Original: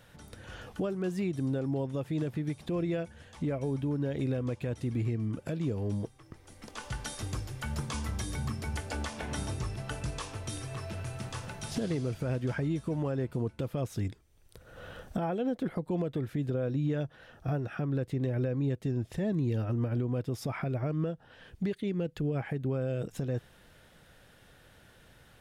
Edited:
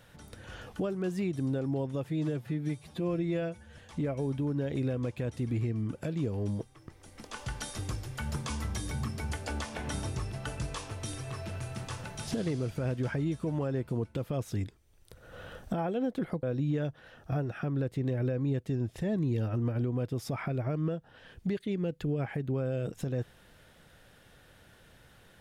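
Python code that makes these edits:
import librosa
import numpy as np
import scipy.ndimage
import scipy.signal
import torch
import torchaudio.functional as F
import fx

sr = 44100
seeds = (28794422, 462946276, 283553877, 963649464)

y = fx.edit(x, sr, fx.stretch_span(start_s=2.1, length_s=1.12, factor=1.5),
    fx.cut(start_s=15.87, length_s=0.72), tone=tone)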